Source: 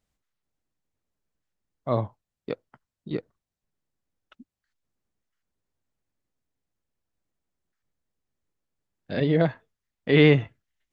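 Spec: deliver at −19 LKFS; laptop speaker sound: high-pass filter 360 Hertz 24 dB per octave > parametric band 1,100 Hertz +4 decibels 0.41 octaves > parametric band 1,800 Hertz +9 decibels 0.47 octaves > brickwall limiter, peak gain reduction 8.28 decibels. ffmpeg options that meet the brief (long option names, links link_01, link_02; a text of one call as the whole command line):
ffmpeg -i in.wav -af "highpass=frequency=360:width=0.5412,highpass=frequency=360:width=1.3066,equalizer=frequency=1100:width_type=o:width=0.41:gain=4,equalizer=frequency=1800:width_type=o:width=0.47:gain=9,volume=11dB,alimiter=limit=-5dB:level=0:latency=1" out.wav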